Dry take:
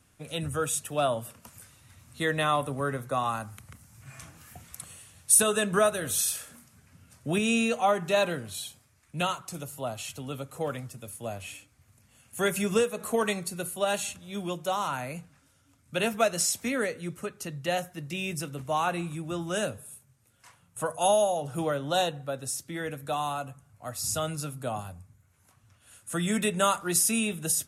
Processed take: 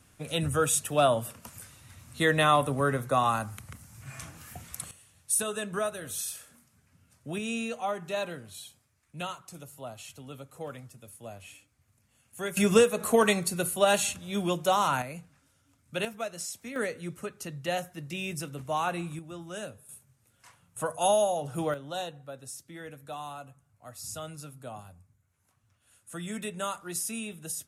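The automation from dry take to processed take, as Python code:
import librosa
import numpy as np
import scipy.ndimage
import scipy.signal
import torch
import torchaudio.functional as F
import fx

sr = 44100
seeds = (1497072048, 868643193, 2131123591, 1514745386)

y = fx.gain(x, sr, db=fx.steps((0.0, 3.5), (4.91, -7.5), (12.57, 4.5), (15.02, -3.0), (16.05, -10.5), (16.76, -2.0), (19.19, -9.0), (19.89, -1.0), (21.74, -9.0)))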